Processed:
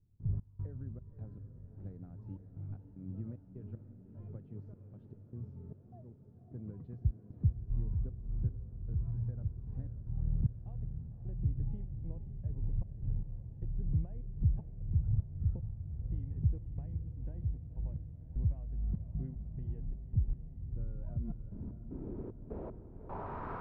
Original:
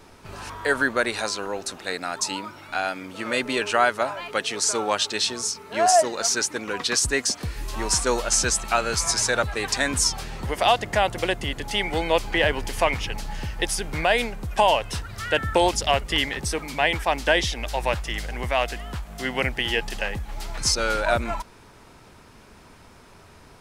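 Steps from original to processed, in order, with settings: low-pass 4 kHz 12 dB/octave; compression 12:1, threshold -34 dBFS, peak gain reduction 20.5 dB; low-pass sweep 120 Hz -> 1.2 kHz, 20.97–23.51 s; trance gate ".x.xx.x..xxx" 76 bpm -24 dB; echo that smears into a reverb 544 ms, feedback 71%, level -10 dB; trim +6 dB

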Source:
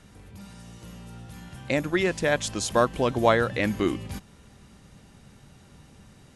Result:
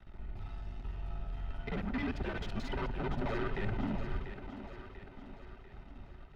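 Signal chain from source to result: time reversed locally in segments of 44 ms; resonant low shelf 100 Hz +10.5 dB, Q 1.5; waveshaping leveller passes 2; saturation -26 dBFS, distortion -4 dB; distance through air 350 m; band-stop 410 Hz, Q 12; comb of notches 590 Hz; two-band feedback delay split 320 Hz, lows 141 ms, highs 692 ms, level -9 dB; frequency shift -100 Hz; trim -4 dB

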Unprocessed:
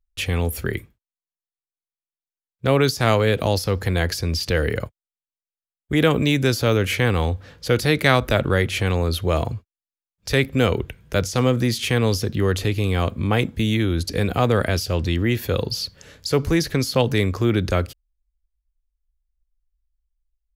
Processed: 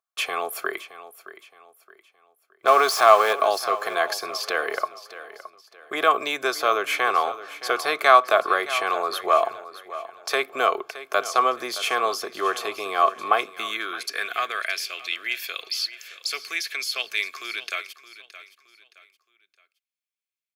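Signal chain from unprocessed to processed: 2.67–3.33 s: jump at every zero crossing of -20 dBFS; in parallel at +3 dB: compression, threshold -25 dBFS, peak gain reduction 14 dB; on the sum: comb of notches 950 Hz; small resonant body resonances 390/660/1100 Hz, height 13 dB, ringing for 30 ms; on a send: feedback delay 619 ms, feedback 35%, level -15 dB; on the sum: high-pass sweep 960 Hz -> 2.3 kHz, 13.28–14.84 s; trim -6.5 dB

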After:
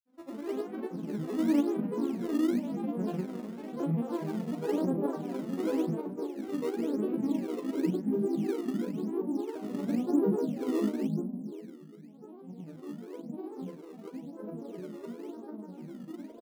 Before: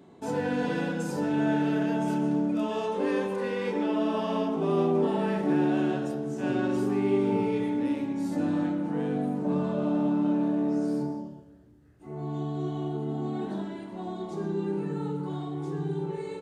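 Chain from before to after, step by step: vocoder on a broken chord major triad, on A#3, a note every 321 ms; filtered feedback delay 259 ms, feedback 69%, low-pass 970 Hz, level -4.5 dB; granulator, grains 20 per s, pitch spread up and down by 7 st; doubling 38 ms -7 dB; in parallel at -9 dB: decimation with a swept rate 16×, swing 160% 0.95 Hz; on the sum: upward expansion 1.5:1, over -36 dBFS; trim -5 dB

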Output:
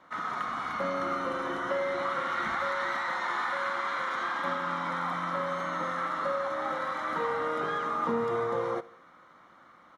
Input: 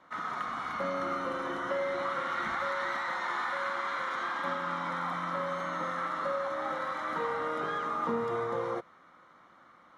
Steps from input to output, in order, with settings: feedback delay 73 ms, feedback 52%, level -21 dB; trim +2 dB

